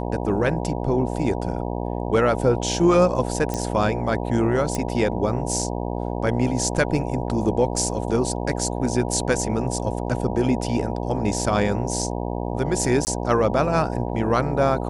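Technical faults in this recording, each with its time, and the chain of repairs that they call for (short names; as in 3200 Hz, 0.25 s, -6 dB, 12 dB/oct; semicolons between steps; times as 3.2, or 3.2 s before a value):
buzz 60 Hz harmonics 16 -27 dBFS
3.54 pop -13 dBFS
4.75 pop -12 dBFS
13.05–13.07 gap 19 ms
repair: de-click; de-hum 60 Hz, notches 16; interpolate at 13.05, 19 ms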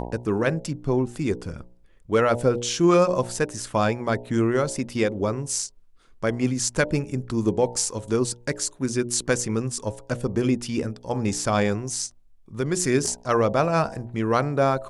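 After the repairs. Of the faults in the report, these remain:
none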